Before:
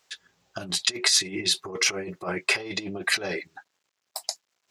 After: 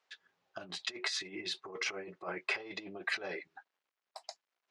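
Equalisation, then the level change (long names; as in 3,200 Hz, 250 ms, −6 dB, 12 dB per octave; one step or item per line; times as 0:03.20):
high-pass filter 650 Hz 6 dB per octave
head-to-tape spacing loss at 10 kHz 25 dB
−4.0 dB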